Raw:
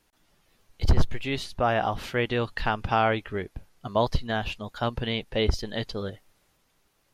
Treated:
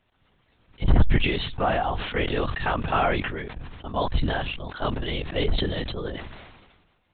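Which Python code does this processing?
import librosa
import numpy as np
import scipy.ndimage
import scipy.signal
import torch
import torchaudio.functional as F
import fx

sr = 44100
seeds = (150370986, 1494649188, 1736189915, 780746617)

y = fx.dynamic_eq(x, sr, hz=380.0, q=0.8, threshold_db=-35.0, ratio=4.0, max_db=-6, at=(3.19, 4.16))
y = fx.lpc_vocoder(y, sr, seeds[0], excitation='whisper', order=10)
y = fx.sustainer(y, sr, db_per_s=42.0)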